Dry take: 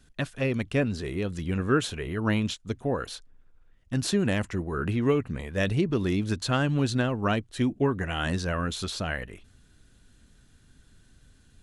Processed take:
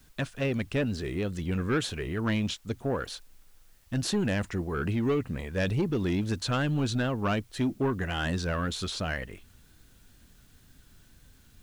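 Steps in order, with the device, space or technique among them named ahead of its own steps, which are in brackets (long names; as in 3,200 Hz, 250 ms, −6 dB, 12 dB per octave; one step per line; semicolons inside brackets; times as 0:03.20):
compact cassette (soft clipping −20.5 dBFS, distortion −14 dB; low-pass filter 9,700 Hz; tape wow and flutter; white noise bed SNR 35 dB)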